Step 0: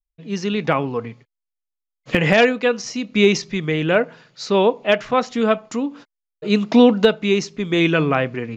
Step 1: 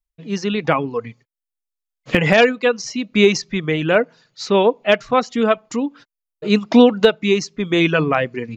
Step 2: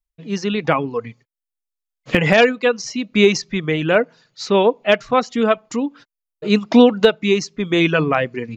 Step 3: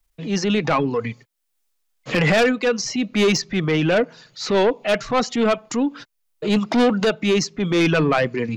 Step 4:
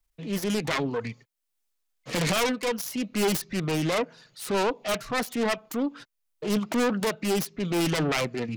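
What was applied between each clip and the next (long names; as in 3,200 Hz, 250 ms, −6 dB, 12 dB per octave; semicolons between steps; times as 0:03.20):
reverb reduction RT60 0.7 s; level +2 dB
no processing that can be heard
soft clipping −13 dBFS, distortion −9 dB; transient designer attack −6 dB, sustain +3 dB; multiband upward and downward compressor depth 40%; level +2.5 dB
phase distortion by the signal itself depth 0.44 ms; level −6.5 dB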